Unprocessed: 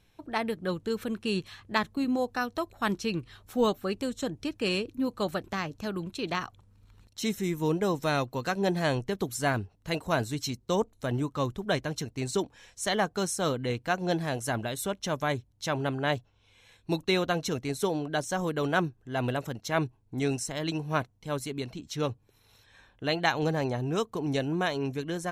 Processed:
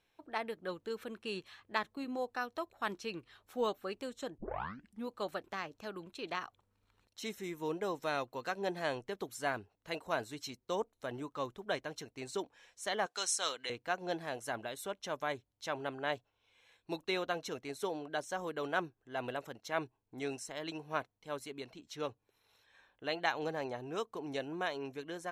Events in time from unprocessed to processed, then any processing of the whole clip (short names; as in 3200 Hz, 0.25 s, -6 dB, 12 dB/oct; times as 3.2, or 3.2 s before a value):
4.38 tape start 0.71 s
13.06–13.7 weighting filter ITU-R 468
whole clip: tone controls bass -14 dB, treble -5 dB; gain -6.5 dB